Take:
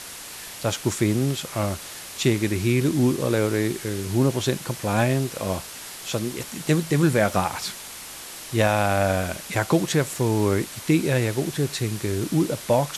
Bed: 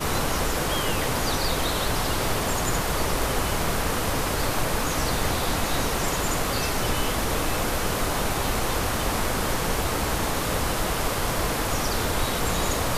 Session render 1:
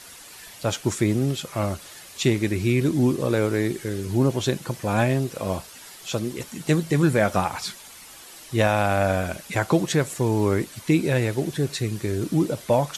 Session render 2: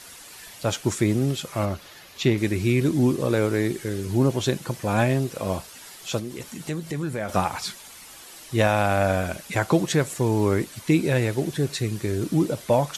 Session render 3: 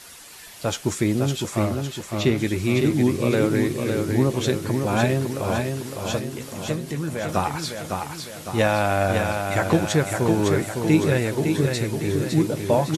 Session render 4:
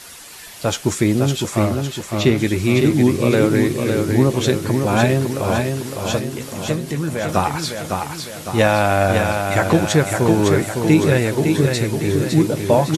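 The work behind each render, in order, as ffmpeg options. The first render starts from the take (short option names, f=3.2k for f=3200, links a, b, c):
-af "afftdn=nr=9:nf=-39"
-filter_complex "[0:a]asettb=1/sr,asplit=3[a][b][c];[a]atrim=end=1.654[d];[b]atrim=start=1.65:end=2.38,asetpts=PTS-STARTPTS,afade=t=in:d=0.004:c=qsin,afade=t=out:st=0.726:d=0.004:c=qsin,equalizer=f=8.6k:w=1.3:g=-12[e];[c]atrim=start=2.376[f];[d][e]acrossfade=d=0.004:c1=hsin:c2=qsin[g];[g][f]acrossfade=d=0.004:c1=qsin:c2=hsin,asettb=1/sr,asplit=3[h][i][j];[h]atrim=end=6.194[k];[i]atrim=start=6.19:end=7.29,asetpts=PTS-STARTPTS,afade=t=in:d=0.004:c=qsin,afade=t=out:st=1.096:d=0.004:c=qsin,acompressor=threshold=-32dB:ratio=2:attack=3.2:release=140:knee=1:detection=peak[l];[j]atrim=start=7.286[m];[k][l]acrossfade=d=0.004:c1=hsin:c2=qsin[n];[n][m]acrossfade=d=0.004:c1=qsin:c2=hsin"
-filter_complex "[0:a]asplit=2[a][b];[b]adelay=13,volume=-12dB[c];[a][c]amix=inputs=2:normalize=0,aecho=1:1:557|1114|1671|2228|2785|3342:0.562|0.287|0.146|0.0746|0.038|0.0194"
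-af "volume=5dB,alimiter=limit=-2dB:level=0:latency=1"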